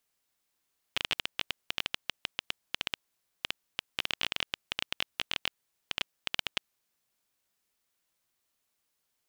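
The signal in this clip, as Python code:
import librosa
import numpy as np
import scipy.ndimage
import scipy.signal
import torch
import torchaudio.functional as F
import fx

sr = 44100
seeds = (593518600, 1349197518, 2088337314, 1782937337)

y = fx.geiger_clicks(sr, seeds[0], length_s=5.97, per_s=11.0, level_db=-11.0)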